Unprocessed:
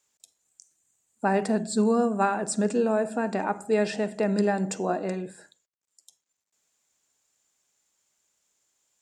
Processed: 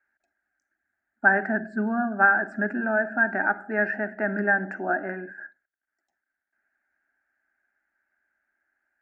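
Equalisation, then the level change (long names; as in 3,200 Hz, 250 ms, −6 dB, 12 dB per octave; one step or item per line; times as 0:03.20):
low-pass with resonance 1,600 Hz, resonance Q 8.6
high-frequency loss of the air 60 metres
phaser with its sweep stopped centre 710 Hz, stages 8
0.0 dB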